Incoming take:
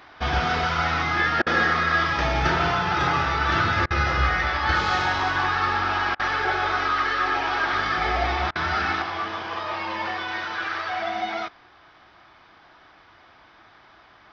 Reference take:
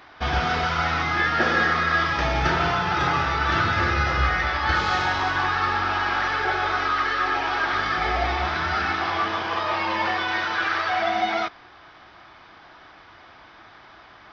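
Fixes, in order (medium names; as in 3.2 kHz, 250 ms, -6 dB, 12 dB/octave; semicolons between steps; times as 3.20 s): interpolate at 1.42/3.86/6.15/8.51 s, 44 ms; gain correction +4.5 dB, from 9.02 s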